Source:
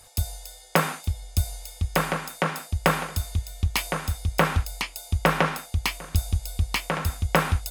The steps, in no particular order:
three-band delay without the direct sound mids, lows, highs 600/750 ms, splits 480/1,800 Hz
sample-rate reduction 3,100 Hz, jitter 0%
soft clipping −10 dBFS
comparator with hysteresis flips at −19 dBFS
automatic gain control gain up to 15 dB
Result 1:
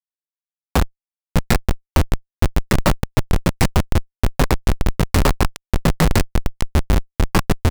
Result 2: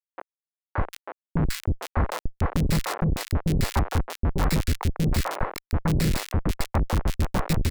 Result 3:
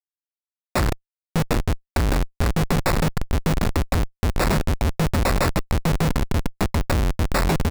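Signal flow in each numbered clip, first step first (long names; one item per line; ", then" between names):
sample-rate reduction, then three-band delay without the direct sound, then comparator with hysteresis, then soft clipping, then automatic gain control
sample-rate reduction, then automatic gain control, then comparator with hysteresis, then soft clipping, then three-band delay without the direct sound
soft clipping, then automatic gain control, then three-band delay without the direct sound, then sample-rate reduction, then comparator with hysteresis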